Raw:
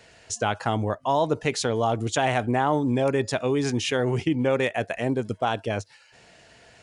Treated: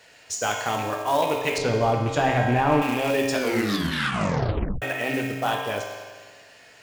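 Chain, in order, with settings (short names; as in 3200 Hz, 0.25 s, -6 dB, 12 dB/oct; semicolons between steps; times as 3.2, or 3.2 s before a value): rattling part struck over -27 dBFS, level -23 dBFS; low shelf 290 Hz -12 dB; reverb RT60 1.6 s, pre-delay 3 ms, DRR -1.5 dB; short-mantissa float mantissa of 2-bit; 1.58–2.82 RIAA curve playback; 3.33 tape stop 1.49 s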